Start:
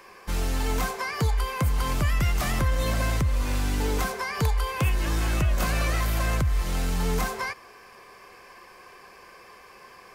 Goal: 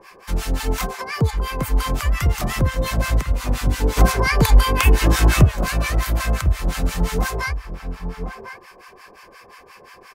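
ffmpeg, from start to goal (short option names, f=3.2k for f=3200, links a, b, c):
-filter_complex "[0:a]asplit=2[a][b];[b]adelay=1050,volume=-7dB,highshelf=f=4k:g=-23.6[c];[a][c]amix=inputs=2:normalize=0,acrossover=split=880[d][e];[d]aeval=exprs='val(0)*(1-1/2+1/2*cos(2*PI*5.7*n/s))':c=same[f];[e]aeval=exprs='val(0)*(1-1/2-1/2*cos(2*PI*5.7*n/s))':c=same[g];[f][g]amix=inputs=2:normalize=0,asplit=3[h][i][j];[h]afade=t=out:st=3.96:d=0.02[k];[i]acontrast=76,afade=t=in:st=3.96:d=0.02,afade=t=out:st=5.44:d=0.02[l];[j]afade=t=in:st=5.44:d=0.02[m];[k][l][m]amix=inputs=3:normalize=0,volume=8dB"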